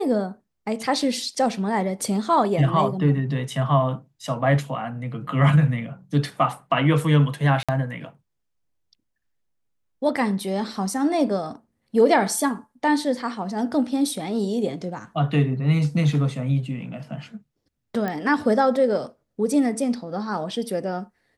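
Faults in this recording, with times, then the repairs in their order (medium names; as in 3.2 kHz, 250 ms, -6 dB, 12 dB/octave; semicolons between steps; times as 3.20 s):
7.63–7.69 s: dropout 56 ms
18.08 s: pop -15 dBFS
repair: de-click; interpolate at 7.63 s, 56 ms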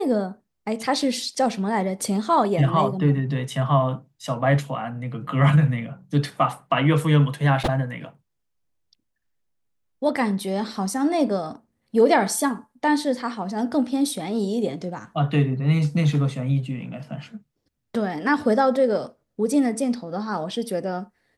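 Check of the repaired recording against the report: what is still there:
nothing left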